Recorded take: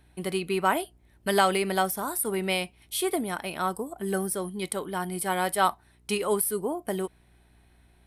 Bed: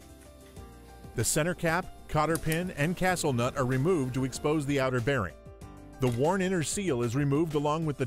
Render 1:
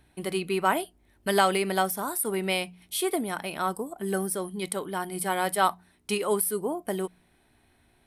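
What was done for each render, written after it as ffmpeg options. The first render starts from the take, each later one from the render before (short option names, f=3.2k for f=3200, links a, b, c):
-af "bandreject=f=60:t=h:w=4,bandreject=f=120:t=h:w=4,bandreject=f=180:t=h:w=4"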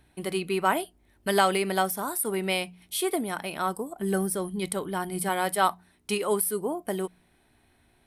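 -filter_complex "[0:a]asettb=1/sr,asplit=3[a][b][c];[a]atrim=end=3.994[d];[b]atrim=start=3.99:end=5.29,asetpts=PTS-STARTPTS,afade=t=in:d=0.004:c=qsin,afade=t=out:st=1.296:d=0.004:c=qsin,lowshelf=f=140:g=10.5[e];[c]atrim=start=5.286[f];[d][e]acrossfade=d=0.004:c1=hsin:c2=qsin[g];[g][f]acrossfade=d=0.004:c1=qsin:c2=hsin"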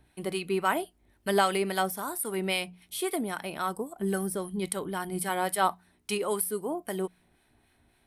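-filter_complex "[0:a]acrossover=split=1100[a][b];[a]aeval=exprs='val(0)*(1-0.5/2+0.5/2*cos(2*PI*3.7*n/s))':c=same[c];[b]aeval=exprs='val(0)*(1-0.5/2-0.5/2*cos(2*PI*3.7*n/s))':c=same[d];[c][d]amix=inputs=2:normalize=0"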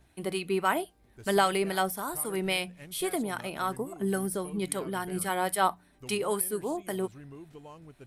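-filter_complex "[1:a]volume=-20dB[a];[0:a][a]amix=inputs=2:normalize=0"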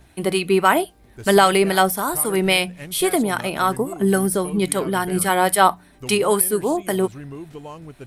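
-af "volume=11.5dB,alimiter=limit=-2dB:level=0:latency=1"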